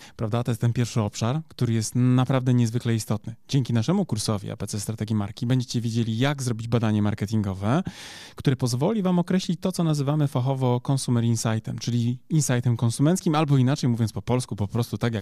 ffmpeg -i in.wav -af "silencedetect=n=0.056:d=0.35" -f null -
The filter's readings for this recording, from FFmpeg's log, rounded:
silence_start: 7.88
silence_end: 8.40 | silence_duration: 0.52